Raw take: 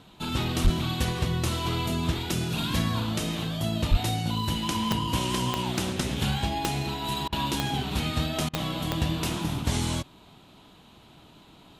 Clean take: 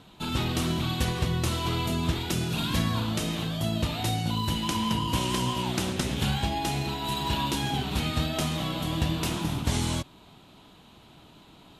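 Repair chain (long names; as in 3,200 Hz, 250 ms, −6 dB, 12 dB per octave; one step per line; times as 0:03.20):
clipped peaks rebuilt −13 dBFS
click removal
0:00.63–0:00.75: high-pass filter 140 Hz 24 dB per octave
0:03.90–0:04.02: high-pass filter 140 Hz 24 dB per octave
repair the gap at 0:07.28/0:08.49, 43 ms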